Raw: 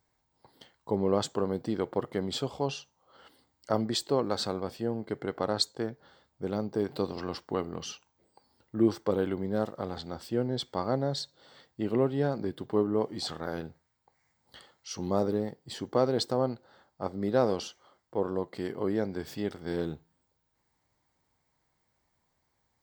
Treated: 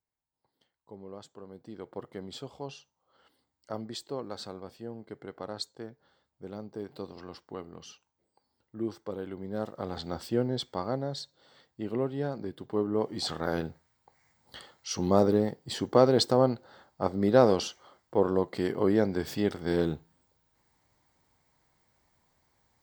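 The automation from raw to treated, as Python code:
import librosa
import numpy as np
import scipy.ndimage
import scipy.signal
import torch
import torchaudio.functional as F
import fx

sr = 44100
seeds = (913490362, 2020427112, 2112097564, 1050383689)

y = fx.gain(x, sr, db=fx.line((1.39, -18.0), (2.0, -9.0), (9.24, -9.0), (10.14, 3.5), (11.09, -4.0), (12.64, -4.0), (13.52, 5.0)))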